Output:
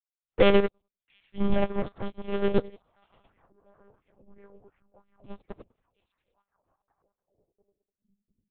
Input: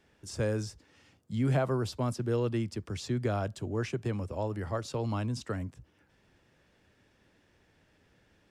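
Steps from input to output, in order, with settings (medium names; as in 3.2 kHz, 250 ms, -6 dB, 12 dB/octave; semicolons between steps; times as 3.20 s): backward echo that repeats 101 ms, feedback 63%, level -5 dB; 0.33–0.67 s: time-frequency box 270–2100 Hz +11 dB; waveshaping leveller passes 2; touch-sensitive flanger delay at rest 8 ms, full sweep at -25.5 dBFS; Chebyshev shaper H 7 -17 dB, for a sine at -11 dBFS; 2.59–5.25 s: wah-wah 2.9 Hz 470–2200 Hz, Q 4.1; repeats whose band climbs or falls 698 ms, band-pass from 3 kHz, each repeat -1.4 oct, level -2 dB; monotone LPC vocoder at 8 kHz 200 Hz; upward expansion 2.5:1, over -36 dBFS; trim +2 dB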